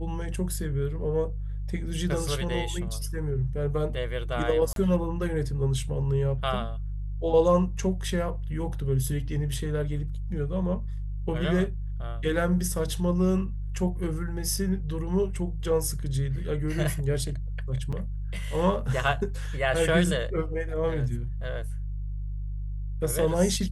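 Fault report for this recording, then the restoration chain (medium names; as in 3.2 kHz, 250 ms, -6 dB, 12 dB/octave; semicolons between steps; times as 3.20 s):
hum 50 Hz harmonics 3 -32 dBFS
4.73–4.76 s: dropout 32 ms
17.92–17.93 s: dropout 5.7 ms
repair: de-hum 50 Hz, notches 3; interpolate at 4.73 s, 32 ms; interpolate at 17.92 s, 5.7 ms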